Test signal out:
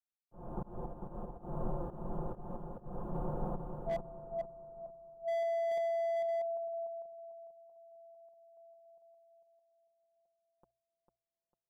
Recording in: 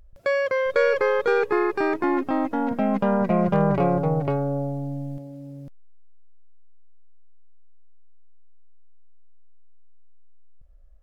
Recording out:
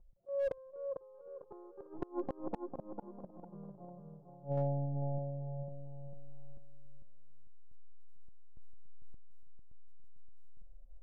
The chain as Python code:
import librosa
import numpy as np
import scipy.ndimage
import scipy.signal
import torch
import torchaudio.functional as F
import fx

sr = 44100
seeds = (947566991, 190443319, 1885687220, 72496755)

p1 = scipy.signal.sosfilt(scipy.signal.cheby2(4, 40, 1900.0, 'lowpass', fs=sr, output='sos'), x)
p2 = fx.peak_eq(p1, sr, hz=320.0, db=-3.5, octaves=0.23)
p3 = fx.hum_notches(p2, sr, base_hz=60, count=2)
p4 = p3 + 0.78 * np.pad(p3, (int(5.7 * sr / 1000.0), 0))[:len(p3)]
p5 = fx.auto_swell(p4, sr, attack_ms=245.0)
p6 = fx.gate_flip(p5, sr, shuts_db=-16.0, range_db=-29)
p7 = fx.tremolo_random(p6, sr, seeds[0], hz=3.5, depth_pct=75)
p8 = p7 + fx.echo_feedback(p7, sr, ms=449, feedback_pct=34, wet_db=-6.0, dry=0)
p9 = fx.slew_limit(p8, sr, full_power_hz=27.0)
y = F.gain(torch.from_numpy(p9), -4.0).numpy()